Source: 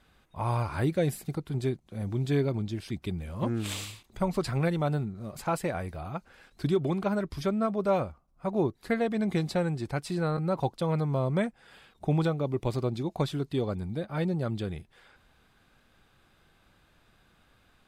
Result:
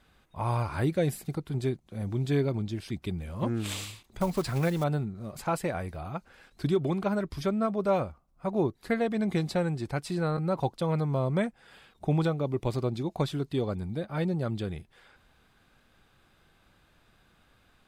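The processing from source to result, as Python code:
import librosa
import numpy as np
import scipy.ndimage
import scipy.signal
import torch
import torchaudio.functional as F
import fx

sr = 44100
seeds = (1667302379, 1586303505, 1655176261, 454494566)

y = fx.block_float(x, sr, bits=5, at=(4.21, 4.86))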